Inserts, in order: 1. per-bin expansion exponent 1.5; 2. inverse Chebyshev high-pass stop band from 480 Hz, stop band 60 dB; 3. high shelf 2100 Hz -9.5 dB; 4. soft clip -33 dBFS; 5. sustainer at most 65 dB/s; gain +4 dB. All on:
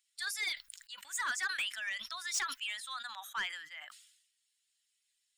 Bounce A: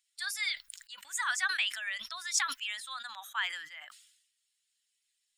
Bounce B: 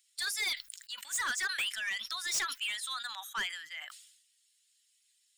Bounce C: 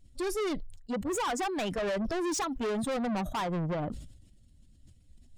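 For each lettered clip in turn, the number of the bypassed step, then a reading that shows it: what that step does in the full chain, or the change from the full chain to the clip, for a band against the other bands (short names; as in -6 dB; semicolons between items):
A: 4, distortion -11 dB; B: 3, 1 kHz band -3.5 dB; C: 2, 250 Hz band +35.5 dB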